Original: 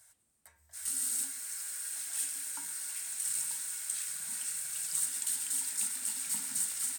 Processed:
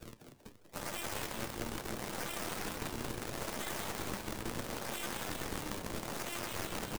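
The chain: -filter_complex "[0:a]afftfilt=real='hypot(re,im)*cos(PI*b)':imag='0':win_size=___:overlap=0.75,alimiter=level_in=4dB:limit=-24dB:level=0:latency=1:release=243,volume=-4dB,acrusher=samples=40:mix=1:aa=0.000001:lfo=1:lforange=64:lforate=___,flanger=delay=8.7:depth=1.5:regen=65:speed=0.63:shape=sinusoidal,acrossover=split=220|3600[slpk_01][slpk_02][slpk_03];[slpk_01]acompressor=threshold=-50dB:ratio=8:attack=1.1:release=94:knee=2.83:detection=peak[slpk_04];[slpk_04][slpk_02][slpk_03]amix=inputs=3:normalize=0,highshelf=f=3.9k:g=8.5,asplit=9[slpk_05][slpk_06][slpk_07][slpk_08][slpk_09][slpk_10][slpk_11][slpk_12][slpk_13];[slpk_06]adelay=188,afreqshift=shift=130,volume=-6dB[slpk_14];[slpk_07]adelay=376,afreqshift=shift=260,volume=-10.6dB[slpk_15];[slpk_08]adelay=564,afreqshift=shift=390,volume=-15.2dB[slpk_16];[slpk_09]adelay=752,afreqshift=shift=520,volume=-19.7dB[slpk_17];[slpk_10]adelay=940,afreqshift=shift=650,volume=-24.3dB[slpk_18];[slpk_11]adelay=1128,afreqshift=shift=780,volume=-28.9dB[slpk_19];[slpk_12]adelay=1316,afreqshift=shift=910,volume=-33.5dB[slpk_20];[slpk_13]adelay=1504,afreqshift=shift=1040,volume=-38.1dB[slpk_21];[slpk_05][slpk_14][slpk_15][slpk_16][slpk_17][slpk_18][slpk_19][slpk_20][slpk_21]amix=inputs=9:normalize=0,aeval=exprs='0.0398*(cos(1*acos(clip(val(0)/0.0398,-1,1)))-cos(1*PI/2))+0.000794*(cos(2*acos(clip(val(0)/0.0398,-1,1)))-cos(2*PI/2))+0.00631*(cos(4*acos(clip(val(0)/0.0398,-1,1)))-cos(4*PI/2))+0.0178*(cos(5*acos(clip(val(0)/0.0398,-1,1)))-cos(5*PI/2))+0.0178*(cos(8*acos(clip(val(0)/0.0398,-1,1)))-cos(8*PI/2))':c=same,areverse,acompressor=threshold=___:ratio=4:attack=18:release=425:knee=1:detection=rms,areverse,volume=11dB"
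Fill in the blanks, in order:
512, 0.75, -47dB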